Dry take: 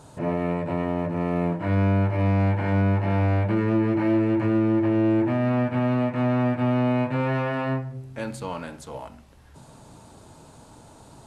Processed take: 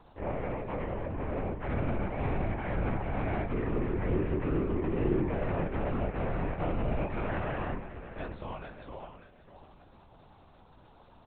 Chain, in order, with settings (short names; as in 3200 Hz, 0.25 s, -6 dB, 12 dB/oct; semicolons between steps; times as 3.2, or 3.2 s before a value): low shelf 190 Hz -6.5 dB; feedback echo 0.589 s, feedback 30%, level -12 dB; LPC vocoder at 8 kHz whisper; gain -6.5 dB